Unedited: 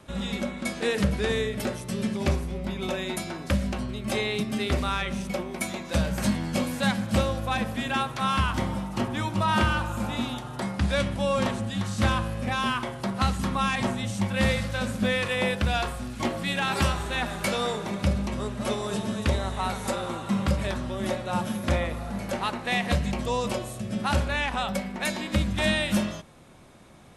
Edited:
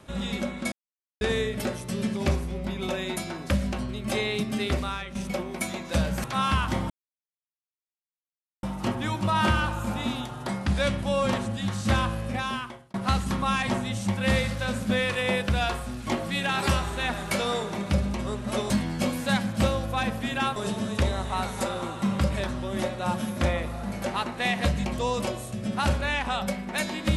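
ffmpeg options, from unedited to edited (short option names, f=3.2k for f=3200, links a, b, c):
-filter_complex "[0:a]asplit=9[a][b][c][d][e][f][g][h][i];[a]atrim=end=0.72,asetpts=PTS-STARTPTS,afade=t=out:st=0.716:d=0.004:c=hsin[j];[b]atrim=start=0.72:end=1.21,asetpts=PTS-STARTPTS,volume=0[k];[c]atrim=start=1.21:end=5.15,asetpts=PTS-STARTPTS,afade=t=in:d=0.004:c=hsin,afade=t=out:st=3.45:d=0.49:silence=0.281838[l];[d]atrim=start=5.15:end=6.242,asetpts=PTS-STARTPTS,afade=t=in:d=0.004:c=hsin:silence=0.281838[m];[e]atrim=start=8.098:end=8.76,asetpts=PTS-STARTPTS,afade=t=out:st=0.658:d=0.004:c=hsin,apad=pad_dur=1.73[n];[f]atrim=start=8.76:end=13.07,asetpts=PTS-STARTPTS,afade=t=in:d=0.004:c=hsin,afade=t=out:st=3.63:d=0.68[o];[g]atrim=start=13.07:end=18.832,asetpts=PTS-STARTPTS,afade=t=in:d=0.004:c=hsin[p];[h]atrim=start=6.238:end=8.102[q];[i]atrim=start=18.828[r];[j][k][l][m]concat=n=4:v=0:a=1[s];[n][o][p]concat=n=3:v=0:a=1[t];[s][t]acrossfade=d=0.004:c1=hsin:c2=hsin[u];[u][q]acrossfade=d=0.004:c1=hsin:c2=hsin[v];[v][r]acrossfade=d=0.004:c1=hsin:c2=hsin"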